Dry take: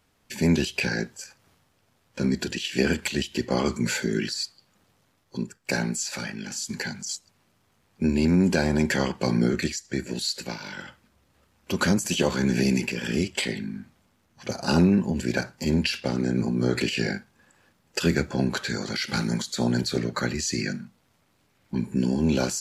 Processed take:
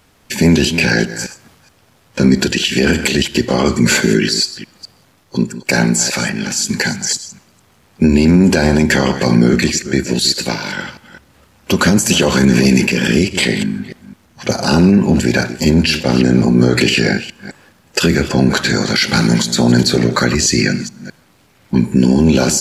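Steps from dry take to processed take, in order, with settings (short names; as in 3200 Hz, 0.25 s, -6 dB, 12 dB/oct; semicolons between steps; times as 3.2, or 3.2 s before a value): reverse delay 0.211 s, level -14 dB; on a send at -21 dB: reverb, pre-delay 9 ms; on the sum: maximiser +15.5 dB; gain -1 dB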